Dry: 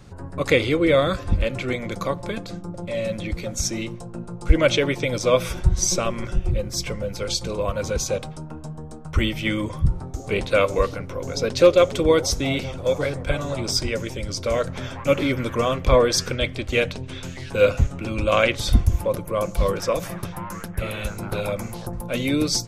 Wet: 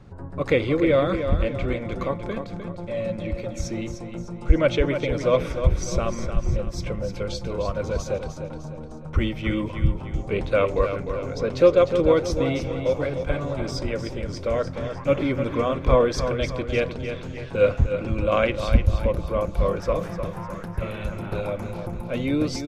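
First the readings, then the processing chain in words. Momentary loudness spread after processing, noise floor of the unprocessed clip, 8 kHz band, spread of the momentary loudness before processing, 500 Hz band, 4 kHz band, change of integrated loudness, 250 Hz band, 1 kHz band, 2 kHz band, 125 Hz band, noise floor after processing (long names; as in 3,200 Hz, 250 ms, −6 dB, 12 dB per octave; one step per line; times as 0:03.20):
12 LU, −37 dBFS, −13.0 dB, 14 LU, −1.0 dB, −9.0 dB, −1.5 dB, −0.5 dB, −2.0 dB, −5.0 dB, −0.5 dB, −36 dBFS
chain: low-pass filter 1,500 Hz 6 dB per octave
repeating echo 303 ms, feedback 45%, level −8.5 dB
level −1 dB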